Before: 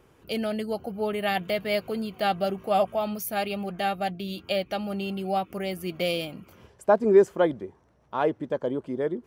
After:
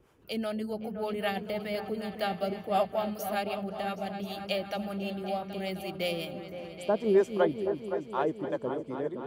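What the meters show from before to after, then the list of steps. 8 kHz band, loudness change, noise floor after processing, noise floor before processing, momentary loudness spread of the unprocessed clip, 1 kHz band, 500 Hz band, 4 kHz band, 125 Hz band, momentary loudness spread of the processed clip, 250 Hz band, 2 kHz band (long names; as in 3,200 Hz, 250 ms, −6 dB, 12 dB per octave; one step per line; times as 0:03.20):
−6.0 dB, −5.0 dB, −47 dBFS, −60 dBFS, 9 LU, −5.0 dB, −5.0 dB, −4.5 dB, −4.0 dB, 8 LU, −4.0 dB, −5.0 dB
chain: two-band tremolo in antiphase 5.2 Hz, depth 70%, crossover 470 Hz
echo whose low-pass opens from repeat to repeat 258 ms, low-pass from 400 Hz, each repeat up 2 octaves, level −6 dB
level −2 dB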